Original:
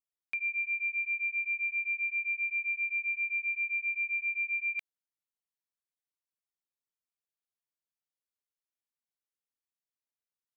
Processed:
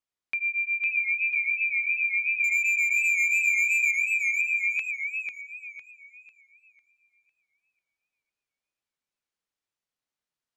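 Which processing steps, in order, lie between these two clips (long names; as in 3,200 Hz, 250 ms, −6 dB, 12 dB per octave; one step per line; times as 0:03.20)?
0:02.44–0:03.91: leveller curve on the samples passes 3
high-frequency loss of the air 54 metres
feedback echo with a swinging delay time 500 ms, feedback 35%, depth 158 cents, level −4.5 dB
level +5.5 dB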